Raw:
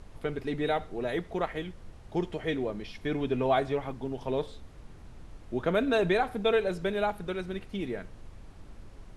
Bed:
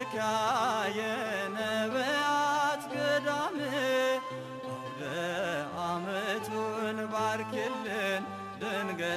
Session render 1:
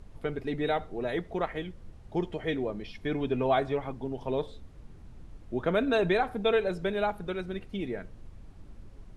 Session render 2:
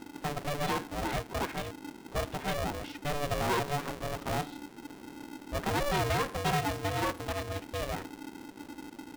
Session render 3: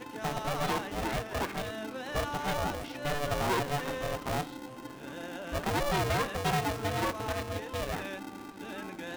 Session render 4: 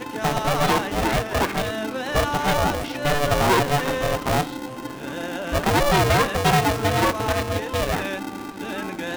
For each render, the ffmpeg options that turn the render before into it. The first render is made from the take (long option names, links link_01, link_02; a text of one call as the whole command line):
ffmpeg -i in.wav -af "afftdn=noise_reduction=6:noise_floor=-50" out.wav
ffmpeg -i in.wav -af "asoftclip=type=tanh:threshold=-24.5dB,aeval=exprs='val(0)*sgn(sin(2*PI*290*n/s))':channel_layout=same" out.wav
ffmpeg -i in.wav -i bed.wav -filter_complex "[1:a]volume=-9.5dB[link_01];[0:a][link_01]amix=inputs=2:normalize=0" out.wav
ffmpeg -i in.wav -af "volume=11dB" out.wav